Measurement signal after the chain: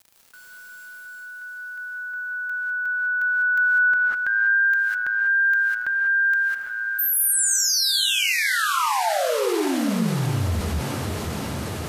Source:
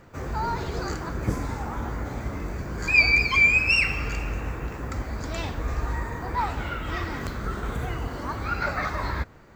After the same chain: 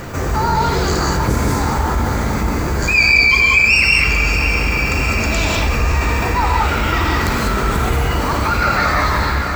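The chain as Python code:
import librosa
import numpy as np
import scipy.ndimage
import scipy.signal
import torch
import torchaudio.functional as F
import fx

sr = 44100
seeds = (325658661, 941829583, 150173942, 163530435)

p1 = fx.high_shelf(x, sr, hz=4400.0, db=7.5)
p2 = fx.rider(p1, sr, range_db=3, speed_s=2.0)
p3 = p1 + (p2 * 10.0 ** (-0.5 / 20.0))
p4 = fx.quant_dither(p3, sr, seeds[0], bits=12, dither='none')
p5 = p4 + fx.echo_diffused(p4, sr, ms=621, feedback_pct=66, wet_db=-12.0, dry=0)
p6 = fx.rev_gated(p5, sr, seeds[1], gate_ms=220, shape='rising', drr_db=-2.0)
p7 = fx.env_flatten(p6, sr, amount_pct=50)
y = p7 * 10.0 ** (-5.0 / 20.0)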